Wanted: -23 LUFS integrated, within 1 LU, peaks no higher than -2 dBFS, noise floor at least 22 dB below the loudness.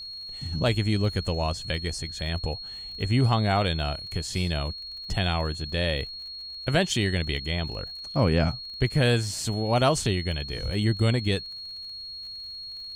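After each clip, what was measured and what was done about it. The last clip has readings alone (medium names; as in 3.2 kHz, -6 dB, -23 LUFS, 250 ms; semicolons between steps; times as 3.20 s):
tick rate 44 per s; steady tone 4.3 kHz; tone level -36 dBFS; loudness -27.0 LUFS; peak level -8.5 dBFS; loudness target -23.0 LUFS
-> de-click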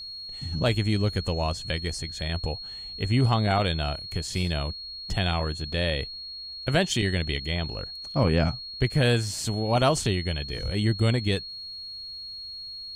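tick rate 0 per s; steady tone 4.3 kHz; tone level -36 dBFS
-> band-stop 4.3 kHz, Q 30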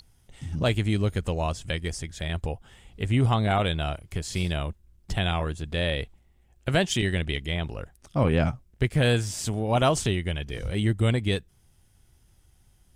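steady tone not found; loudness -27.0 LUFS; peak level -8.5 dBFS; loudness target -23.0 LUFS
-> trim +4 dB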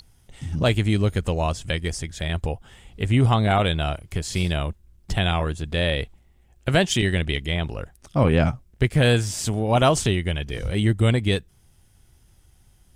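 loudness -23.0 LUFS; peak level -4.5 dBFS; noise floor -58 dBFS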